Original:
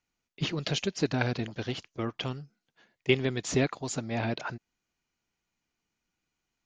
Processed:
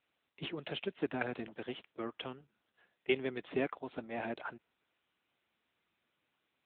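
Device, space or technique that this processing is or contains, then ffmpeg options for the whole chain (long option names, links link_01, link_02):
telephone: -af "highpass=270,lowpass=3600,volume=-5dB" -ar 8000 -c:a libopencore_amrnb -b:a 10200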